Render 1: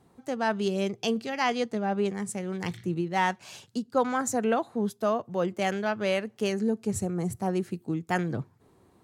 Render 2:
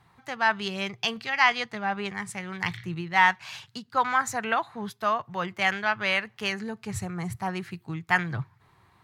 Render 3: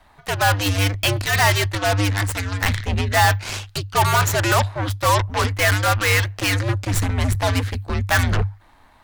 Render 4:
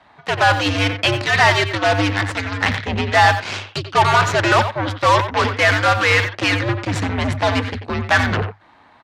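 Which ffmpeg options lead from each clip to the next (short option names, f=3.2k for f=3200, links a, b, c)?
-af "equalizer=f=125:t=o:w=1:g=6,equalizer=f=250:t=o:w=1:g=-10,equalizer=f=500:t=o:w=1:g=-9,equalizer=f=1k:t=o:w=1:g=7,equalizer=f=2k:t=o:w=1:g=9,equalizer=f=4k:t=o:w=1:g=5,equalizer=f=8k:t=o:w=1:g=-5"
-af "volume=20.5dB,asoftclip=hard,volume=-20.5dB,aeval=exprs='0.1*(cos(1*acos(clip(val(0)/0.1,-1,1)))-cos(1*PI/2))+0.0316*(cos(8*acos(clip(val(0)/0.1,-1,1)))-cos(8*PI/2))':c=same,afreqshift=-100,volume=8dB"
-filter_complex "[0:a]highpass=130,lowpass=4.3k,asplit=2[a][b];[b]adelay=90,highpass=300,lowpass=3.4k,asoftclip=type=hard:threshold=-15.5dB,volume=-8dB[c];[a][c]amix=inputs=2:normalize=0,volume=4dB"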